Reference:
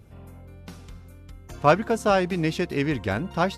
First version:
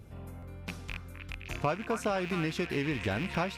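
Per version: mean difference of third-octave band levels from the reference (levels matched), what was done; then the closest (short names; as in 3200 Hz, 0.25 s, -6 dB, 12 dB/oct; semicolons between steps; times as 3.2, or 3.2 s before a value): 7.0 dB: rattling part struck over -37 dBFS, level -23 dBFS; compressor 6:1, threshold -28 dBFS, peak gain reduction 15 dB; delay with a stepping band-pass 0.259 s, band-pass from 1400 Hz, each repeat 0.7 oct, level -3.5 dB; stuck buffer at 0.39, samples 512, times 2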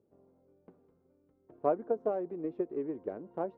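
10.5 dB: ladder band-pass 470 Hz, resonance 35%; tilt -2.5 dB/oct; transient shaper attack +7 dB, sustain +3 dB; dynamic EQ 600 Hz, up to +3 dB, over -38 dBFS, Q 0.75; gain -7.5 dB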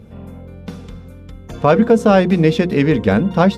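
3.5 dB: high shelf 5400 Hz -8 dB; notches 60/120/180/240/300/360/420/480 Hz; small resonant body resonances 210/470/3500 Hz, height 11 dB, ringing for 45 ms; maximiser +8.5 dB; gain -1 dB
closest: third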